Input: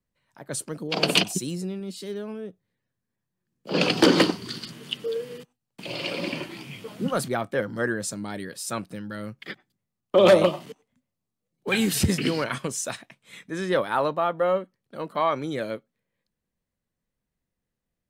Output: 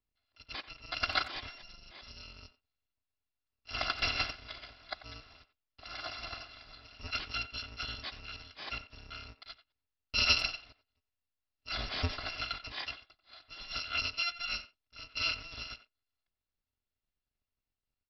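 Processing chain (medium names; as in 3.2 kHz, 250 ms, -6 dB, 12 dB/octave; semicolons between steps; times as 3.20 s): bit-reversed sample order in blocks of 256 samples; resampled via 11.025 kHz; speakerphone echo 90 ms, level -14 dB; trim -3.5 dB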